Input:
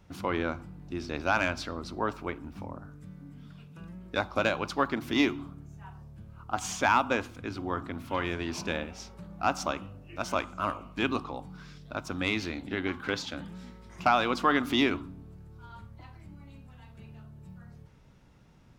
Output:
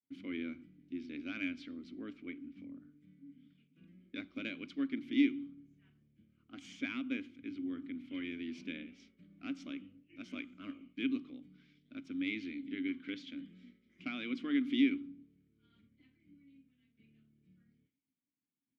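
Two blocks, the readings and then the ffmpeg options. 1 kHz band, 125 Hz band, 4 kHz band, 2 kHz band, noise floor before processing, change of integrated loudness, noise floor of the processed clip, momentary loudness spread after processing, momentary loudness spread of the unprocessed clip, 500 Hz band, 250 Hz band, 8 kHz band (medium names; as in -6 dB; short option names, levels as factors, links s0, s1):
-29.0 dB, -19.5 dB, -11.5 dB, -12.5 dB, -57 dBFS, -8.5 dB, under -85 dBFS, 20 LU, 23 LU, -18.5 dB, -3.0 dB, under -20 dB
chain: -filter_complex "[0:a]agate=range=0.0224:threshold=0.00708:ratio=3:detection=peak,asplit=3[s0][s1][s2];[s0]bandpass=f=270:t=q:w=8,volume=1[s3];[s1]bandpass=f=2290:t=q:w=8,volume=0.501[s4];[s2]bandpass=f=3010:t=q:w=8,volume=0.355[s5];[s3][s4][s5]amix=inputs=3:normalize=0,volume=1.12"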